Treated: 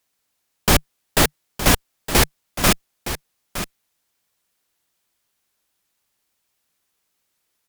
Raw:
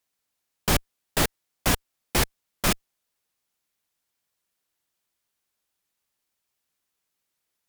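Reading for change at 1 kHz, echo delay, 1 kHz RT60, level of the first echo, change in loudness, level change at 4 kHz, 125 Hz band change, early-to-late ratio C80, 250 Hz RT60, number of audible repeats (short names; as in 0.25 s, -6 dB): +7.5 dB, 0.915 s, none, -11.5 dB, +6.5 dB, +7.5 dB, +6.5 dB, none, none, 1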